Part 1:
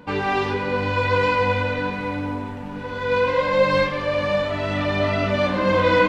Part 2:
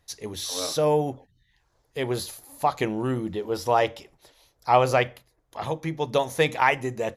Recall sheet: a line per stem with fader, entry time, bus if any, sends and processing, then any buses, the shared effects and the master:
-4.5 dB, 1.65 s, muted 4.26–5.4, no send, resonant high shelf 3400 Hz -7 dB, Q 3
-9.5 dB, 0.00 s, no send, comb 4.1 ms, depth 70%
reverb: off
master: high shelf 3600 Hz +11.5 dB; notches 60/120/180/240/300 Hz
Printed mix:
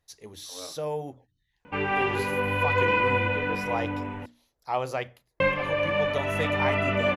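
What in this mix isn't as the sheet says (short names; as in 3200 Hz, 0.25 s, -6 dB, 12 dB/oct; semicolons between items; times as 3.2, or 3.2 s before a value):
stem 2: missing comb 4.1 ms, depth 70%; master: missing high shelf 3600 Hz +11.5 dB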